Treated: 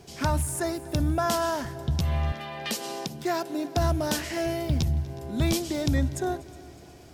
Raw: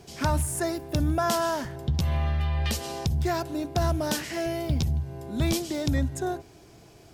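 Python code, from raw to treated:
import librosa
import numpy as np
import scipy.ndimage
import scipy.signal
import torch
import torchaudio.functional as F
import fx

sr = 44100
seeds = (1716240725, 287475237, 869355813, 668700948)

y = fx.echo_heads(x, sr, ms=122, heads='second and third', feedback_pct=53, wet_db=-22.5)
y = fx.rider(y, sr, range_db=10, speed_s=2.0)
y = fx.highpass(y, sr, hz=190.0, slope=24, at=(2.32, 3.77))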